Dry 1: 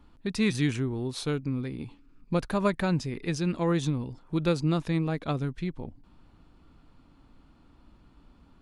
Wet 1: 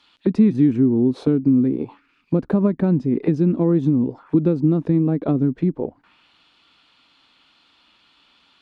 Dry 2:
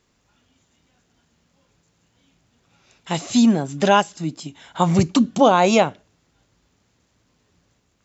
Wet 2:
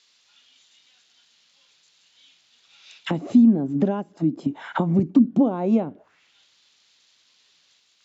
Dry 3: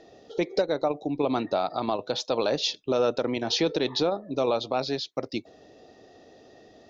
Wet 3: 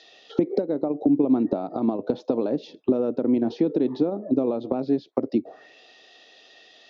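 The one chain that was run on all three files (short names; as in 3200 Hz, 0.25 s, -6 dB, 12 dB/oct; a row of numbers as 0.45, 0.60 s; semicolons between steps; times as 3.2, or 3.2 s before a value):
compressor 4:1, threshold -28 dBFS; auto-wah 260–4200 Hz, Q 2.1, down, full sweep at -30 dBFS; normalise peaks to -6 dBFS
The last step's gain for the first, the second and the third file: +19.5, +14.5, +15.0 dB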